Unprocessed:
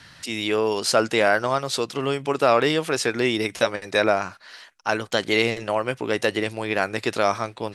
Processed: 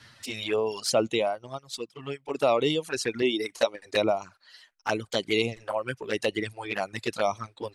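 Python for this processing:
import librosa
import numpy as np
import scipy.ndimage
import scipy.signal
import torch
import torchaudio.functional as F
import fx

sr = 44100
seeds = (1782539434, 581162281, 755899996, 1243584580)

y = fx.dereverb_blind(x, sr, rt60_s=1.7)
y = fx.low_shelf_res(y, sr, hz=200.0, db=-9.5, q=1.5, at=(3.22, 3.86))
y = fx.env_flanger(y, sr, rest_ms=10.4, full_db=-19.5)
y = fx.upward_expand(y, sr, threshold_db=-43.0, expansion=1.5, at=(1.16, 2.33), fade=0.02)
y = F.gain(torch.from_numpy(y), -1.5).numpy()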